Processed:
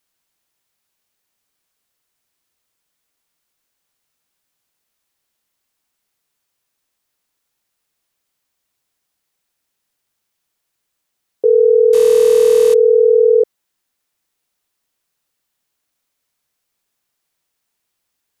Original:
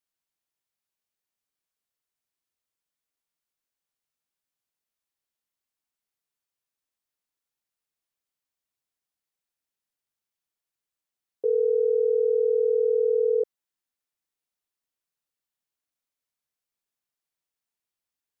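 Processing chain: 11.93–12.74 delta modulation 64 kbps, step -31.5 dBFS; in parallel at -1 dB: limiter -23.5 dBFS, peak gain reduction 7.5 dB; on the sum: gain +9 dB

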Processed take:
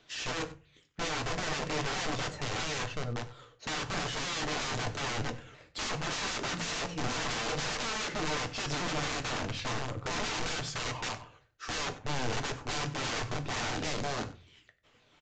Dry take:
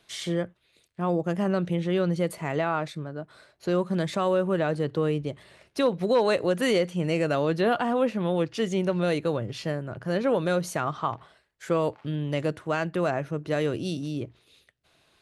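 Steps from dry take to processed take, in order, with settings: repeated pitch sweeps -5.5 st, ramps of 0.326 s; wrapped overs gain 29.5 dB; echo 94 ms -18.5 dB; on a send at -6.5 dB: reverb, pre-delay 3 ms; on the sum: downsampling 16000 Hz

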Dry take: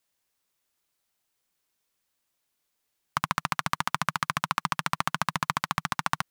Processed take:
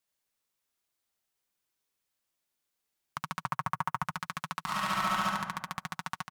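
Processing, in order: 3.42–4.03 graphic EQ 125/250/500/1000/4000/8000 Hz +11/-6/+3/+8/-10/-4 dB; 4.64–5.22 reverb throw, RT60 0.85 s, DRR -5 dB; limiter -10.5 dBFS, peak gain reduction 6.5 dB; feedback echo 76 ms, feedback 35%, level -4.5 dB; gain -6.5 dB

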